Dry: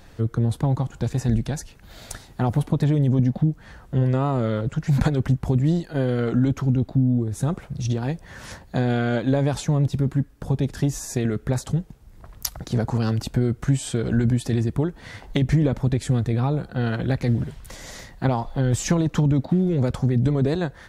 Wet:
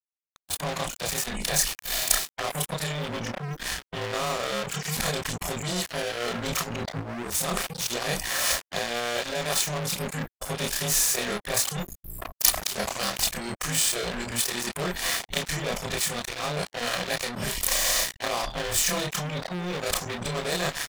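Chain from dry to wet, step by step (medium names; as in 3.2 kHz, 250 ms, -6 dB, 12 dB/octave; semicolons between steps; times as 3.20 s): short-time spectra conjugated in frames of 67 ms; peaking EQ 72 Hz -12 dB 1.6 oct; comb 1.7 ms, depth 97%; reverse; compression 12:1, threshold -34 dBFS, peak gain reduction 16.5 dB; reverse; spectral noise reduction 29 dB; level rider gain up to 12.5 dB; treble shelf 5 kHz +7 dB; crossover distortion -39 dBFS; spectrum-flattening compressor 2:1; trim +1.5 dB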